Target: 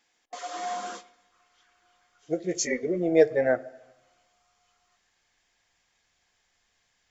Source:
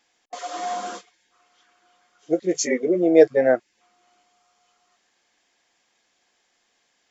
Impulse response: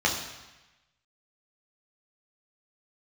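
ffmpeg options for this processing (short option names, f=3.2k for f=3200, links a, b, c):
-filter_complex "[0:a]asubboost=boost=9.5:cutoff=92,asplit=2[a][b];[1:a]atrim=start_sample=2205,lowpass=2.8k[c];[b][c]afir=irnorm=-1:irlink=0,volume=-26dB[d];[a][d]amix=inputs=2:normalize=0,volume=-3.5dB"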